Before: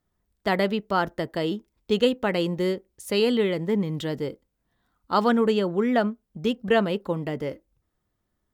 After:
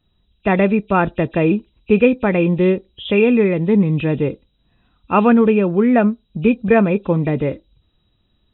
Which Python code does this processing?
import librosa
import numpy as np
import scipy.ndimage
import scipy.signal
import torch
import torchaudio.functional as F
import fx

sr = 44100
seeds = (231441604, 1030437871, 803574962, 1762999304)

p1 = fx.freq_compress(x, sr, knee_hz=2300.0, ratio=4.0)
p2 = fx.low_shelf(p1, sr, hz=320.0, db=9.0)
p3 = fx.rider(p2, sr, range_db=10, speed_s=0.5)
y = p2 + F.gain(torch.from_numpy(p3), -2.5).numpy()